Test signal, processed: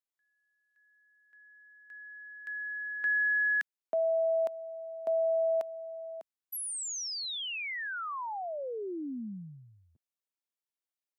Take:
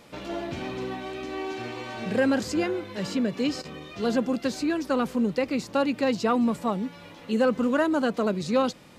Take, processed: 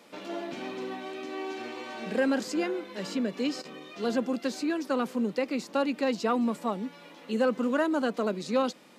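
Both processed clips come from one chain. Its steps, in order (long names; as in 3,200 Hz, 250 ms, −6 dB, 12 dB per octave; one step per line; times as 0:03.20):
high-pass filter 200 Hz 24 dB per octave
level −3 dB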